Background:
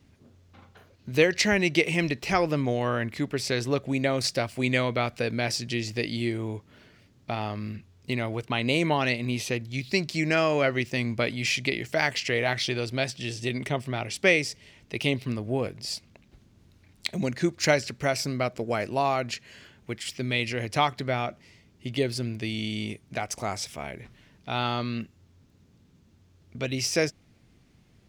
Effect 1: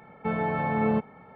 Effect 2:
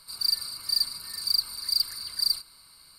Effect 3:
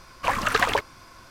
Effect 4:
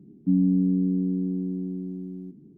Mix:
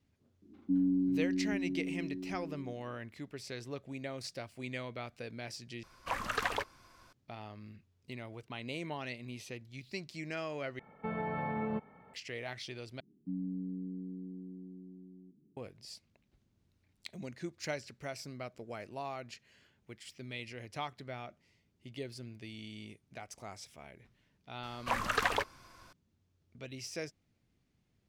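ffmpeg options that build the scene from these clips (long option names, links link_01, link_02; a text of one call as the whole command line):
ffmpeg -i bed.wav -i cue0.wav -i cue1.wav -i cue2.wav -i cue3.wav -filter_complex "[4:a]asplit=2[link_01][link_02];[3:a]asplit=2[link_03][link_04];[0:a]volume=-16dB[link_05];[link_01]aecho=1:1:3.2:0.86[link_06];[1:a]alimiter=limit=-18dB:level=0:latency=1:release=100[link_07];[link_05]asplit=4[link_08][link_09][link_10][link_11];[link_08]atrim=end=5.834[link_12];[link_03]atrim=end=1.3,asetpts=PTS-STARTPTS,volume=-12dB[link_13];[link_09]atrim=start=7.126:end=10.794[link_14];[link_07]atrim=end=1.35,asetpts=PTS-STARTPTS,volume=-8.5dB[link_15];[link_10]atrim=start=12.136:end=13.004[link_16];[link_02]atrim=end=2.57,asetpts=PTS-STARTPTS,volume=-17.5dB[link_17];[link_11]atrim=start=15.566[link_18];[link_06]atrim=end=2.57,asetpts=PTS-STARTPTS,volume=-10.5dB,afade=type=in:duration=0.004:curve=hsin,afade=type=out:start_time=2.566:duration=0.004:curve=hsin,adelay=420[link_19];[link_04]atrim=end=1.3,asetpts=PTS-STARTPTS,volume=-9dB,afade=type=in:duration=0.004:curve=hsin,afade=type=out:start_time=1.296:duration=0.004:curve=hsin,adelay=24630[link_20];[link_12][link_13]acrossfade=duration=0.004:curve1=hsin:curve2=hsin[link_21];[link_21][link_14]acrossfade=duration=0.004:curve1=hsin:curve2=hsin[link_22];[link_22][link_15]acrossfade=duration=0.004:curve1=hsin:curve2=hsin[link_23];[link_23][link_16]acrossfade=duration=0.004:curve1=hsin:curve2=hsin[link_24];[link_24][link_17]acrossfade=duration=0.004:curve1=hsin:curve2=hsin[link_25];[link_25][link_18]acrossfade=duration=0.004:curve1=hsin:curve2=hsin[link_26];[link_26][link_19][link_20]amix=inputs=3:normalize=0" out.wav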